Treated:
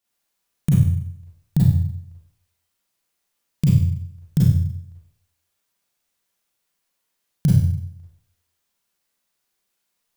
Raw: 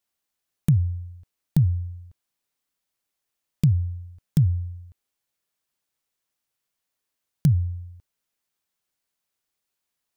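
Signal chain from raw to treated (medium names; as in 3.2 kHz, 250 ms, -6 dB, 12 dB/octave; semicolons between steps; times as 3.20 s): Schroeder reverb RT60 0.67 s, combs from 32 ms, DRR -5.5 dB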